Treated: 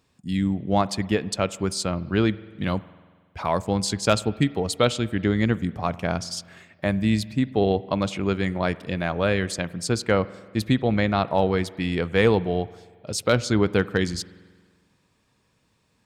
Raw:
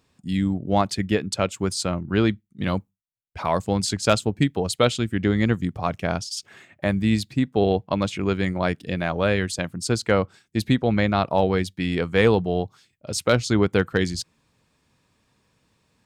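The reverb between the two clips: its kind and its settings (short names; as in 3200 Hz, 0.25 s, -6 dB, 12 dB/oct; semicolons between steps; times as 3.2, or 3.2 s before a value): spring tank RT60 1.6 s, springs 46 ms, chirp 50 ms, DRR 18 dB; gain -1 dB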